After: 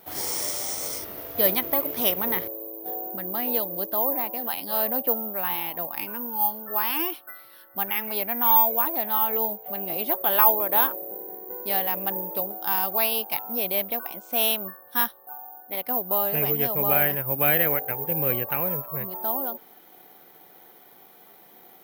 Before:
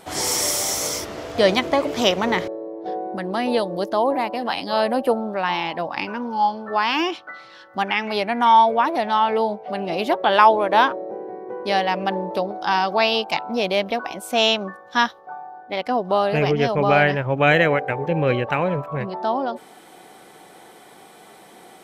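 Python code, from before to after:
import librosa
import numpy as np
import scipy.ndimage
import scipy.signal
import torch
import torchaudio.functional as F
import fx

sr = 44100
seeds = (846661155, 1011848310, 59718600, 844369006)

y = (np.kron(scipy.signal.resample_poly(x, 1, 3), np.eye(3)[0]) * 3)[:len(x)]
y = y * 10.0 ** (-9.5 / 20.0)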